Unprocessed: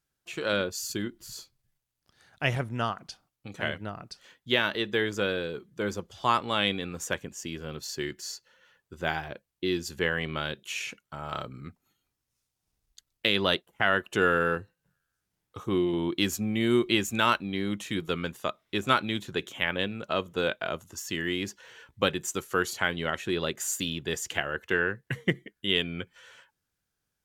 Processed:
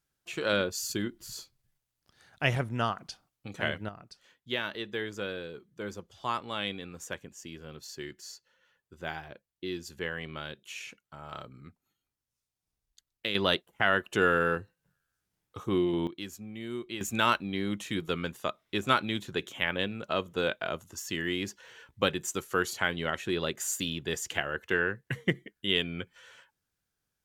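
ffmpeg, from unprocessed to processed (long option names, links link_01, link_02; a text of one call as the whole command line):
ffmpeg -i in.wav -af "asetnsamples=nb_out_samples=441:pad=0,asendcmd='3.89 volume volume -7.5dB;13.35 volume volume -1dB;16.07 volume volume -13.5dB;17.01 volume volume -1.5dB',volume=0dB" out.wav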